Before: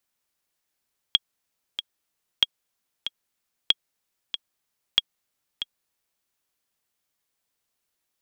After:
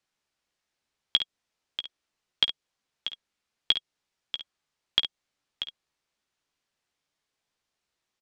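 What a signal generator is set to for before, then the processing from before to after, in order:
metronome 94 bpm, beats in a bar 2, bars 4, 3.29 kHz, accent 11 dB -4 dBFS
low-pass 5.9 kHz 12 dB/octave; dynamic bell 1.4 kHz, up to -5 dB, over -40 dBFS, Q 0.72; on a send: early reflections 14 ms -10 dB, 53 ms -13.5 dB, 67 ms -11 dB

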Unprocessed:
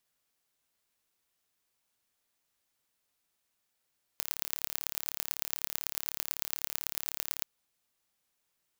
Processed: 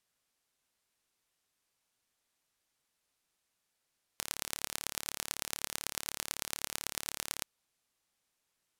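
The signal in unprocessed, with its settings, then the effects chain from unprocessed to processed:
pulse train 36 per s, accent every 4, -3.5 dBFS 3.23 s
low-pass 12 kHz 12 dB/octave

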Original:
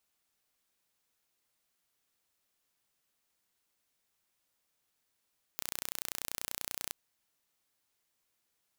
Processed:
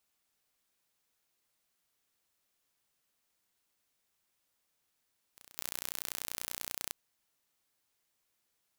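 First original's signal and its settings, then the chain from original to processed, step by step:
pulse train 30.3 per s, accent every 0, -9 dBFS 1.35 s
pre-echo 211 ms -18 dB

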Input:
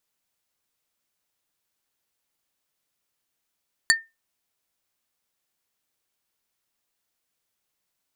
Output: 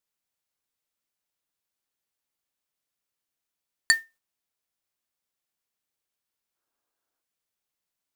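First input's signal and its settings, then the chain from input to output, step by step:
wood hit plate, lowest mode 1.81 kHz, modes 4, decay 0.22 s, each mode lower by 1 dB, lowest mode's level -12 dB
time-frequency box 6.55–7.22 s, 250–1700 Hz +8 dB; gate -51 dBFS, range -7 dB; modulation noise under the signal 22 dB

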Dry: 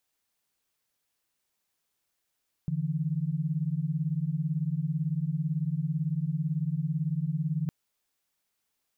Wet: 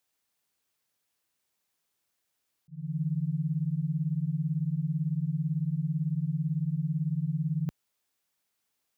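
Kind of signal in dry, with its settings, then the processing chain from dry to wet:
chord D3/E3 sine, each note -29.5 dBFS 5.01 s
high-pass 60 Hz; slow attack 336 ms

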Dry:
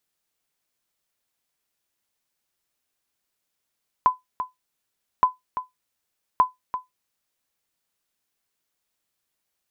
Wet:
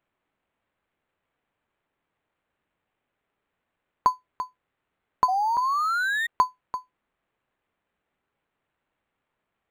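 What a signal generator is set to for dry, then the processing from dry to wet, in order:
sonar ping 1.01 kHz, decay 0.16 s, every 1.17 s, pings 3, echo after 0.34 s, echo -11 dB -8 dBFS
painted sound rise, 5.28–6.27 s, 730–1900 Hz -23 dBFS; decimation joined by straight lines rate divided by 8×

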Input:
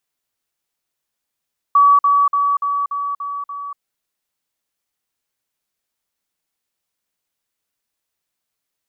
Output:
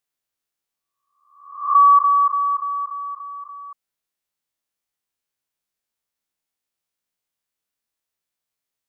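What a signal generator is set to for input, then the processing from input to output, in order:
level ladder 1.14 kHz -7.5 dBFS, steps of -3 dB, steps 7, 0.24 s 0.05 s
reverse spectral sustain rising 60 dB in 0.73 s; upward expansion 1.5:1, over -25 dBFS

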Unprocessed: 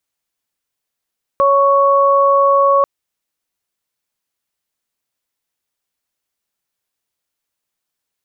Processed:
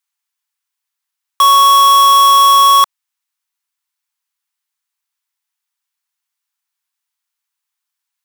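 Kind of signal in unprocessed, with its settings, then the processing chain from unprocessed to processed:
steady additive tone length 1.44 s, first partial 556 Hz, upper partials 1 dB, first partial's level -12 dB
steep high-pass 840 Hz 48 dB/octave; in parallel at -6.5 dB: companded quantiser 2-bit

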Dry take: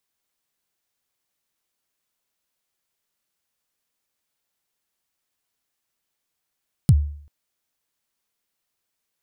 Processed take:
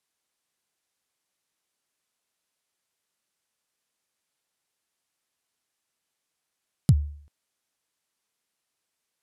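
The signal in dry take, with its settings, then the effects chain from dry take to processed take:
kick drum length 0.39 s, from 170 Hz, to 73 Hz, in 51 ms, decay 0.56 s, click on, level -7 dB
low-pass 12 kHz 24 dB/octave; bass shelf 68 Hz -11.5 dB

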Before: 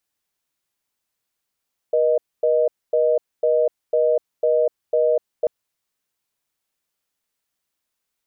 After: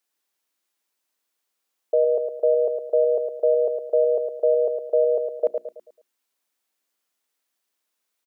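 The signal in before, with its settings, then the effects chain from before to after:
call progress tone reorder tone, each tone -17.5 dBFS 3.54 s
high-pass 220 Hz 24 dB/octave; hum notches 60/120/180/240/300/360 Hz; on a send: feedback delay 109 ms, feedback 40%, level -6 dB

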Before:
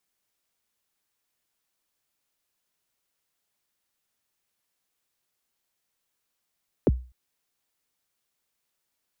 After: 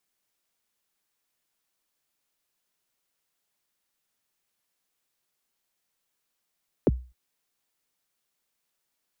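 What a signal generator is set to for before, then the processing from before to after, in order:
kick drum length 0.25 s, from 550 Hz, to 62 Hz, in 31 ms, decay 0.35 s, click off, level -13 dB
peaking EQ 82 Hz -9.5 dB 0.41 oct

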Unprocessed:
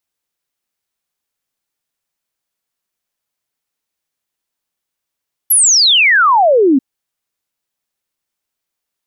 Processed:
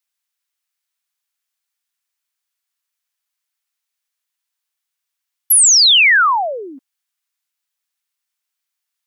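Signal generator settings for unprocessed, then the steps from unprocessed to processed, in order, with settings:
log sweep 12 kHz -> 250 Hz 1.29 s -6.5 dBFS
high-pass 1.2 kHz 12 dB/octave

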